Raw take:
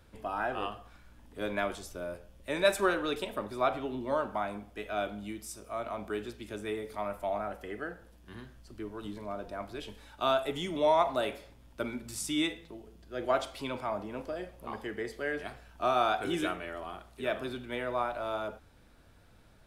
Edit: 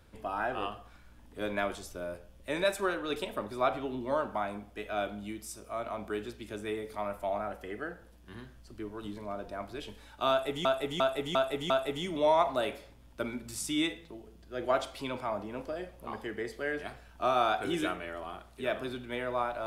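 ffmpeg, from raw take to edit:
-filter_complex "[0:a]asplit=7[s0][s1][s2][s3][s4][s5][s6];[s0]atrim=end=2.642[s7];[s1]atrim=start=2.638:end=3.102,asetpts=PTS-STARTPTS,volume=0.668[s8];[s2]atrim=start=3.098:end=10.652[s9];[s3]atrim=start=10.298:end=10.652[s10];[s4]atrim=start=10.298:end=10.652[s11];[s5]atrim=start=10.298:end=10.652[s12];[s6]atrim=start=10.298[s13];[s7][s8]acrossfade=d=0.004:c1=hsin:c2=hsin[s14];[s14][s9]acrossfade=d=0.004:c1=hsin:c2=hsin[s15];[s15][s10]acrossfade=d=0.004:c1=hsin:c2=hsin[s16];[s16][s11]acrossfade=d=0.004:c1=hsin:c2=hsin[s17];[s17][s12]acrossfade=d=0.004:c1=hsin:c2=hsin[s18];[s18][s13]acrossfade=d=0.004:c1=hsin:c2=hsin"

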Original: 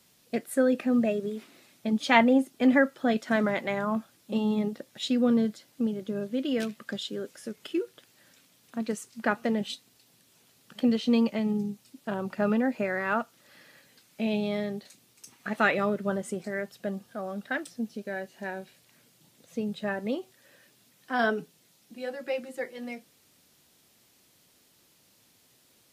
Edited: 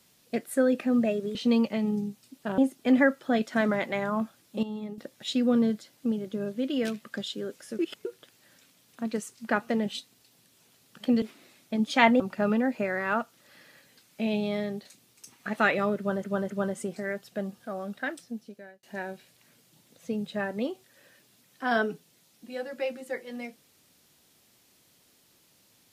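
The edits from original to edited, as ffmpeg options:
-filter_complex "[0:a]asplit=12[s0][s1][s2][s3][s4][s5][s6][s7][s8][s9][s10][s11];[s0]atrim=end=1.352[s12];[s1]atrim=start=10.968:end=12.202[s13];[s2]atrim=start=2.328:end=4.382[s14];[s3]atrim=start=4.378:end=4.732,asetpts=PTS-STARTPTS,volume=0.335[s15];[s4]atrim=start=4.728:end=7.542[s16];[s5]atrim=start=7.538:end=7.802,asetpts=PTS-STARTPTS,areverse[s17];[s6]atrim=start=7.798:end=10.972[s18];[s7]atrim=start=1.348:end=2.332[s19];[s8]atrim=start=12.198:end=16.242[s20];[s9]atrim=start=15.978:end=16.242[s21];[s10]atrim=start=15.978:end=18.31,asetpts=PTS-STARTPTS,afade=t=out:st=1.142:d=1.19:c=qsin[s22];[s11]atrim=start=18.31,asetpts=PTS-STARTPTS,afade=t=in:d=0.004:c=hsin[s23];[s12][s13]acrossfade=d=0.004:c1=hsin:c2=hsin[s24];[s24][s14]acrossfade=d=0.004:c1=hsin:c2=hsin[s25];[s25][s15]acrossfade=d=0.004:c1=hsin:c2=hsin[s26];[s26][s16]acrossfade=d=0.004:c1=hsin:c2=hsin[s27];[s27][s17]acrossfade=d=0.004:c1=hsin:c2=hsin[s28];[s28][s18]acrossfade=d=0.004:c1=hsin:c2=hsin[s29];[s29][s19]acrossfade=d=0.004:c1=hsin:c2=hsin[s30];[s30][s20]acrossfade=d=0.004:c1=hsin:c2=hsin[s31];[s31][s21]acrossfade=d=0.004:c1=hsin:c2=hsin[s32];[s22][s23]concat=n=2:v=0:a=1[s33];[s32][s33]acrossfade=d=0.004:c1=hsin:c2=hsin"

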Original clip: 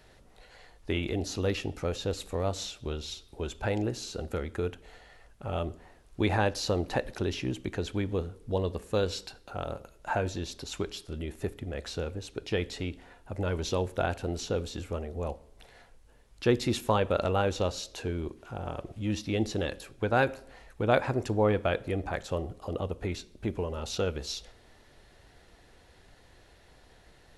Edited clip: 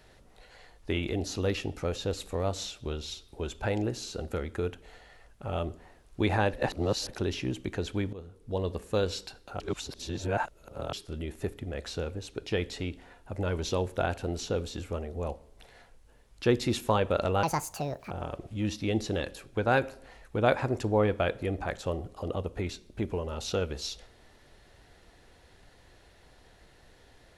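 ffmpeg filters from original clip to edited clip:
-filter_complex "[0:a]asplit=8[s0][s1][s2][s3][s4][s5][s6][s7];[s0]atrim=end=6.532[s8];[s1]atrim=start=6.528:end=7.092,asetpts=PTS-STARTPTS,areverse[s9];[s2]atrim=start=7.088:end=8.13,asetpts=PTS-STARTPTS,afade=t=out:st=1.038:d=0.004:c=hsin:silence=0.158489[s10];[s3]atrim=start=8.13:end=9.602,asetpts=PTS-STARTPTS,afade=t=in:d=0.59:silence=0.158489[s11];[s4]atrim=start=9.598:end=10.932,asetpts=PTS-STARTPTS,areverse[s12];[s5]atrim=start=10.928:end=17.434[s13];[s6]atrim=start=17.43:end=18.56,asetpts=PTS-STARTPTS,asetrate=73647,aresample=44100,atrim=end_sample=29840,asetpts=PTS-STARTPTS[s14];[s7]atrim=start=18.556[s15];[s8][s9]acrossfade=d=0.004:c1=hsin:c2=hsin[s16];[s10][s11]concat=n=2:v=0:a=1[s17];[s16][s17]acrossfade=d=0.004:c1=hsin:c2=hsin[s18];[s18][s12]acrossfade=d=0.004:c1=hsin:c2=hsin[s19];[s19][s13]acrossfade=d=0.004:c1=hsin:c2=hsin[s20];[s20][s14]acrossfade=d=0.004:c1=hsin:c2=hsin[s21];[s21][s15]acrossfade=d=0.004:c1=hsin:c2=hsin"

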